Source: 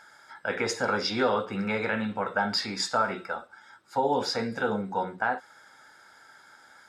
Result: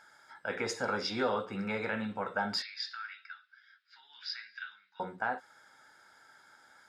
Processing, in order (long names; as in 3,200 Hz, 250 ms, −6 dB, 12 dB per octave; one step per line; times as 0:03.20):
0:02.62–0:05.00: elliptic band-pass filter 1,600–4,900 Hz, stop band 50 dB
level −6 dB